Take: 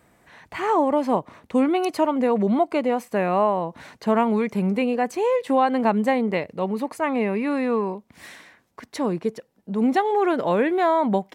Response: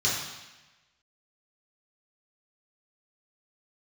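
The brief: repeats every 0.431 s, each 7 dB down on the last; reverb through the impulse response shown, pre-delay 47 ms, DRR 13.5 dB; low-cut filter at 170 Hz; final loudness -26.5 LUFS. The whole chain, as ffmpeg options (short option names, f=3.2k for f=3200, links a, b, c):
-filter_complex "[0:a]highpass=170,aecho=1:1:431|862|1293|1724|2155:0.447|0.201|0.0905|0.0407|0.0183,asplit=2[a][b];[1:a]atrim=start_sample=2205,adelay=47[c];[b][c]afir=irnorm=-1:irlink=0,volume=-25dB[d];[a][d]amix=inputs=2:normalize=0,volume=-4.5dB"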